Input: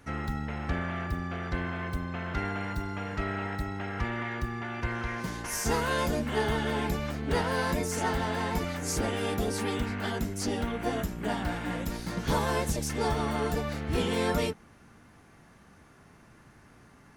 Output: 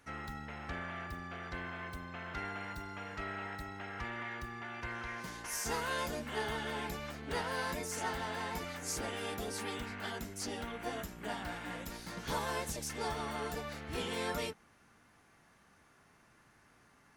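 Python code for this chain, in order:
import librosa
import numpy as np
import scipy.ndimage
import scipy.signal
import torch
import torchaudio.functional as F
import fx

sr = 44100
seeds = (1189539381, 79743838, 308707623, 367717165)

y = fx.low_shelf(x, sr, hz=480.0, db=-9.0)
y = F.gain(torch.from_numpy(y), -5.0).numpy()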